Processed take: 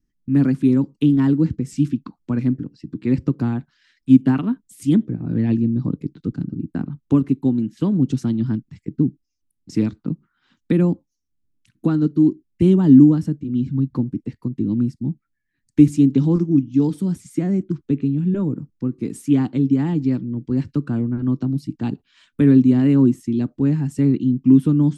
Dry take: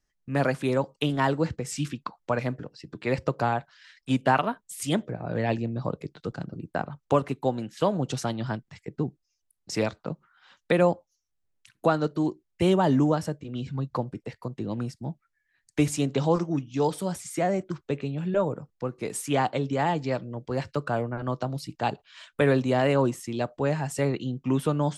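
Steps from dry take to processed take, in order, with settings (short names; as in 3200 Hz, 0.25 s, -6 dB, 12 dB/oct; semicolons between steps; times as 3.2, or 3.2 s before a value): resonant low shelf 410 Hz +13.5 dB, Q 3; gain -6.5 dB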